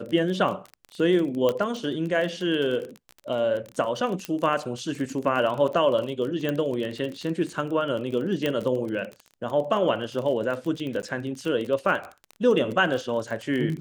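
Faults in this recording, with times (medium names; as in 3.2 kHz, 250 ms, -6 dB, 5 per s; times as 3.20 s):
crackle 29 per s -30 dBFS
1.49 s: pop -12 dBFS
4.25 s: pop -15 dBFS
6.49 s: pop -15 dBFS
8.46 s: pop -13 dBFS
11.02–11.03 s: dropout 9.8 ms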